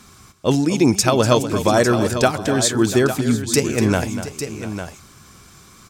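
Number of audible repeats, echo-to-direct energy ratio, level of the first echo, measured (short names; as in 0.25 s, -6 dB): 3, -7.0 dB, -11.5 dB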